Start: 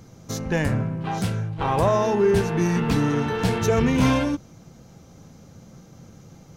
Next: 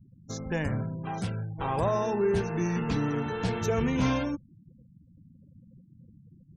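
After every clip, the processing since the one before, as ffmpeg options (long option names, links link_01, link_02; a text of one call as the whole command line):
ffmpeg -i in.wav -af "afftfilt=real='re*gte(hypot(re,im),0.0158)':imag='im*gte(hypot(re,im),0.0158)':win_size=1024:overlap=0.75,volume=-7dB" out.wav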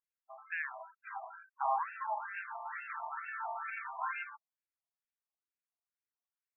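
ffmpeg -i in.wav -af "afftfilt=real='re*between(b*sr/1024,850*pow(2000/850,0.5+0.5*sin(2*PI*2.2*pts/sr))/1.41,850*pow(2000/850,0.5+0.5*sin(2*PI*2.2*pts/sr))*1.41)':imag='im*between(b*sr/1024,850*pow(2000/850,0.5+0.5*sin(2*PI*2.2*pts/sr))/1.41,850*pow(2000/850,0.5+0.5*sin(2*PI*2.2*pts/sr))*1.41)':win_size=1024:overlap=0.75,volume=1dB" out.wav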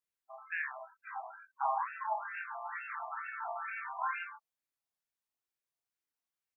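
ffmpeg -i in.wav -filter_complex "[0:a]asplit=2[link_01][link_02];[link_02]adelay=23,volume=-5dB[link_03];[link_01][link_03]amix=inputs=2:normalize=0" out.wav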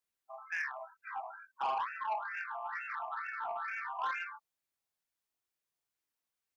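ffmpeg -i in.wav -af "asoftclip=type=tanh:threshold=-30.5dB,volume=2dB" out.wav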